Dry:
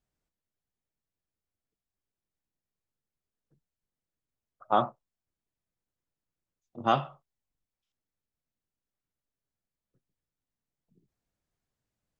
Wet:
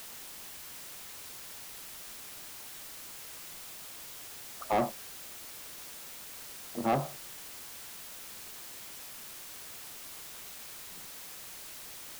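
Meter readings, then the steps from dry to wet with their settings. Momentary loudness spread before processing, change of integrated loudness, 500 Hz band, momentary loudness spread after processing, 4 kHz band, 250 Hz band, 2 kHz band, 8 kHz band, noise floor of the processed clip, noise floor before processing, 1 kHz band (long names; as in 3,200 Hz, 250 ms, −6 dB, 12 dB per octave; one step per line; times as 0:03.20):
9 LU, −10.5 dB, −1.0 dB, 11 LU, +4.5 dB, +1.5 dB, +2.0 dB, can't be measured, −46 dBFS, below −85 dBFS, −4.5 dB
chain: treble cut that deepens with the level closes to 580 Hz, closed at −32.5 dBFS
parametric band 100 Hz −14 dB 0.96 octaves
background noise white −54 dBFS
soft clipping −29.5 dBFS, distortion −7 dB
level +8 dB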